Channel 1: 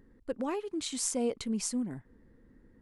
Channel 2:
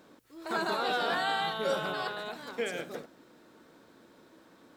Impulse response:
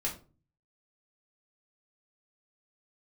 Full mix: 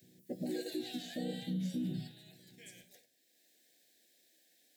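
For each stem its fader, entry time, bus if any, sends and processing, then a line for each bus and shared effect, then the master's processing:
-7.5 dB, 0.00 s, send -8.5 dB, chord vocoder major triad, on B2; tilt -1.5 dB/oct
+1.5 dB, 0.00 s, send -18.5 dB, pre-emphasis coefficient 0.97; auto duck -13 dB, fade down 1.85 s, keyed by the first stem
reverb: on, RT60 0.35 s, pre-delay 4 ms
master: elliptic band-stop 760–1700 Hz, stop band 40 dB; limiter -29.5 dBFS, peak gain reduction 6.5 dB

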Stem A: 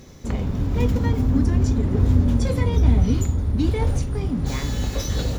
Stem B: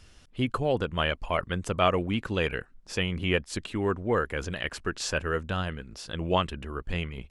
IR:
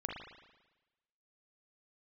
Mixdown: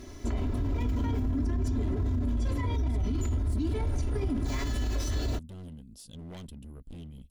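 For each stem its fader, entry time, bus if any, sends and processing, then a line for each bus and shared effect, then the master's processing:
-4.5 dB, 0.00 s, send -10 dB, high shelf 4700 Hz -5 dB; comb 3 ms, depth 99%
-6.0 dB, 0.00 s, no send, EQ curve 210 Hz 0 dB, 360 Hz -11 dB, 610 Hz -10 dB, 2000 Hz -29 dB, 3200 Hz -6 dB, 6200 Hz -4 dB, 11000 Hz +11 dB; hard clip -35.5 dBFS, distortion -5 dB; small resonant body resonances 260/2000 Hz, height 9 dB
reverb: on, RT60 1.1 s, pre-delay 37 ms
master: limiter -22.5 dBFS, peak gain reduction 17.5 dB

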